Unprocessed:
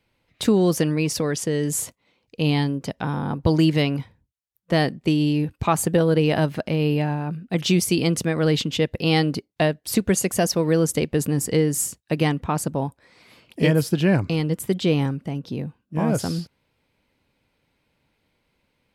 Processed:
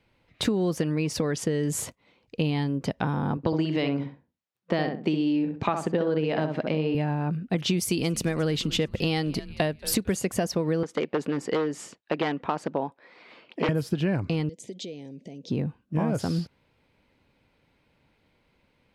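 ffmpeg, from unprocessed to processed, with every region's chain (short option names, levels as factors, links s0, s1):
-filter_complex "[0:a]asettb=1/sr,asplit=3[s0][s1][s2];[s0]atrim=end=3.374[s3];[s1]atrim=start=3.37:end=6.95,asetpts=PTS-STARTPTS,afade=t=in:d=0.004:c=qsin,afade=t=out:st=3.576:d=0.004:c=qsin,highpass=190,lowpass=6000,asplit=2[s4][s5];[s5]adelay=64,lowpass=f=1500:p=1,volume=0.562,asplit=2[s6][s7];[s7]adelay=64,lowpass=f=1500:p=1,volume=0.23,asplit=2[s8][s9];[s9]adelay=64,lowpass=f=1500:p=1,volume=0.23[s10];[s4][s6][s8][s10]amix=inputs=4:normalize=0,atrim=end_sample=157878[s11];[s2]atrim=start=6.946[s12];[s3][s11]acrossfade=d=0.004:c1=hsin:c2=qsin[s13];[s13][s12]acrossfade=d=0.004:c1=qsin:c2=hsin,asettb=1/sr,asplit=3[s14][s15][s16];[s14]atrim=end=7.774[s17];[s15]atrim=start=7.77:end=10.17,asetpts=PTS-STARTPTS,afade=t=in:d=0.004:c=qsin,afade=t=out:st=2.396:d=0.004:c=qsin,aemphasis=mode=production:type=cd,asplit=4[s18][s19][s20][s21];[s19]adelay=225,afreqshift=-130,volume=0.0794[s22];[s20]adelay=450,afreqshift=-260,volume=0.0351[s23];[s21]adelay=675,afreqshift=-390,volume=0.0153[s24];[s18][s22][s23][s24]amix=inputs=4:normalize=0,atrim=end_sample=105840[s25];[s16]atrim=start=10.166[s26];[s17][s25]acrossfade=d=0.004:c1=hsin:c2=qsin[s27];[s27][s26]acrossfade=d=0.004:c1=qsin:c2=hsin,asettb=1/sr,asplit=3[s28][s29][s30];[s28]atrim=end=10.834[s31];[s29]atrim=start=10.83:end=13.69,asetpts=PTS-STARTPTS,afade=t=in:d=0.004:c=qsin,afade=t=out:st=2.856:d=0.004:c=qsin,aeval=exprs='0.2*(abs(mod(val(0)/0.2+3,4)-2)-1)':c=same,highpass=320,lowpass=3900[s32];[s30]atrim=start=13.686[s33];[s31][s32]acrossfade=d=0.004:c1=hsin:c2=qsin[s34];[s34][s33]acrossfade=d=0.004:c1=qsin:c2=hsin,asettb=1/sr,asplit=3[s35][s36][s37];[s35]atrim=end=14.494[s38];[s36]atrim=start=14.49:end=15.5,asetpts=PTS-STARTPTS,afade=t=in:d=0.004:c=qsin,afade=t=out:st=1.006:d=0.004:c=qsin,acompressor=threshold=0.0251:ratio=10:attack=3.2:release=140:knee=1:detection=peak,asuperstop=centerf=1300:order=4:qfactor=0.78,highpass=290,equalizer=f=320:t=q:w=4:g=-4,equalizer=f=810:t=q:w=4:g=-9,equalizer=f=2800:t=q:w=4:g=-6,equalizer=f=6500:t=q:w=4:g=9,lowpass=f=8300:w=0.5412,lowpass=f=8300:w=1.3066[s39];[s37]atrim=start=15.496[s40];[s38][s39]acrossfade=d=0.004:c1=hsin:c2=qsin[s41];[s41][s40]acrossfade=d=0.004:c1=qsin:c2=hsin,lowpass=f=3600:p=1,acompressor=threshold=0.0501:ratio=6,volume=1.5"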